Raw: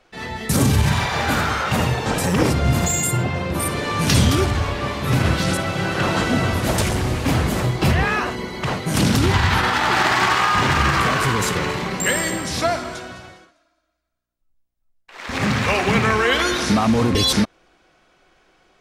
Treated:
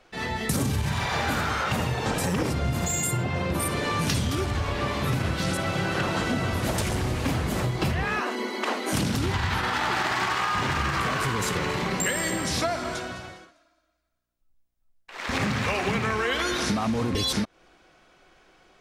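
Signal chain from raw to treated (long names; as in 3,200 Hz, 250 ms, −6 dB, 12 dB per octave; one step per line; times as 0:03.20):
0:08.21–0:08.93: Chebyshev high-pass filter 210 Hz, order 8
downward compressor, threshold −23 dBFS, peak gain reduction 12 dB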